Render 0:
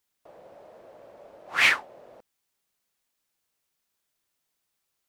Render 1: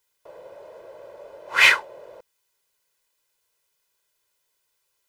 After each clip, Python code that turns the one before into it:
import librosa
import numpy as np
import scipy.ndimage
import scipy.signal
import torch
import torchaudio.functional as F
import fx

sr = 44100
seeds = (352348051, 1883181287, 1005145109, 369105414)

y = fx.bass_treble(x, sr, bass_db=-5, treble_db=0)
y = y + 0.66 * np.pad(y, (int(2.0 * sr / 1000.0), 0))[:len(y)]
y = y * 10.0 ** (4.0 / 20.0)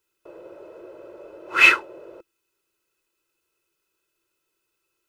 y = fx.low_shelf(x, sr, hz=290.0, db=6.5)
y = fx.small_body(y, sr, hz=(340.0, 1300.0, 2600.0), ring_ms=45, db=17)
y = y * 10.0 ** (-5.0 / 20.0)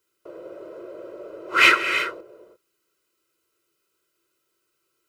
y = fx.notch_comb(x, sr, f0_hz=870.0)
y = fx.rev_gated(y, sr, seeds[0], gate_ms=370, shape='rising', drr_db=7.5)
y = y * 10.0 ** (3.5 / 20.0)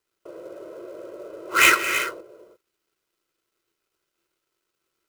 y = fx.dead_time(x, sr, dead_ms=0.07)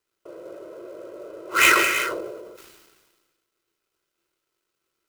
y = fx.sustainer(x, sr, db_per_s=38.0)
y = y * 10.0 ** (-1.0 / 20.0)